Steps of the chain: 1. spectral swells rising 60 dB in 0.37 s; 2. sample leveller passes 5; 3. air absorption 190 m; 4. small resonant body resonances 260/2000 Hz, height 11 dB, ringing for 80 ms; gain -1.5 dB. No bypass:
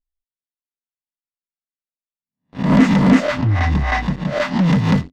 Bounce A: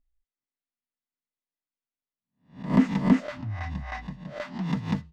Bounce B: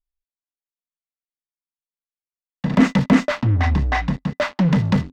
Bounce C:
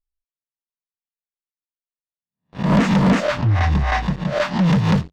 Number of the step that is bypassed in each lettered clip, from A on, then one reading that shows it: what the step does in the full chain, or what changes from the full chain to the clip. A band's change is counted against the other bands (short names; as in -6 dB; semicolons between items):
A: 2, crest factor change +6.0 dB; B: 1, loudness change -3.0 LU; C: 4, 250 Hz band -3.0 dB